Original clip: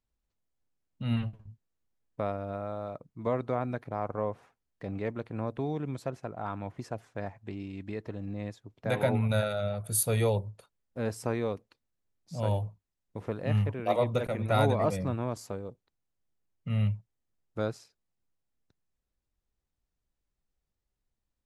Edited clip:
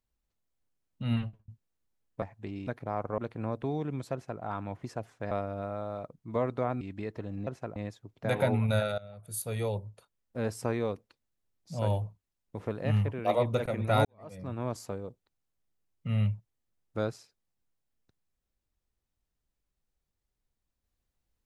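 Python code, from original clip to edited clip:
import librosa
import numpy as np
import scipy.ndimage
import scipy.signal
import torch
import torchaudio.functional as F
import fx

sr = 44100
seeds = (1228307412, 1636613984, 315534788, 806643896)

y = fx.edit(x, sr, fx.fade_out_span(start_s=1.17, length_s=0.31),
    fx.swap(start_s=2.22, length_s=1.5, other_s=7.26, other_length_s=0.45),
    fx.cut(start_s=4.23, length_s=0.9),
    fx.duplicate(start_s=6.08, length_s=0.29, to_s=8.37),
    fx.fade_in_from(start_s=9.59, length_s=1.41, floor_db=-19.0),
    fx.fade_in_span(start_s=14.66, length_s=0.63, curve='qua'), tone=tone)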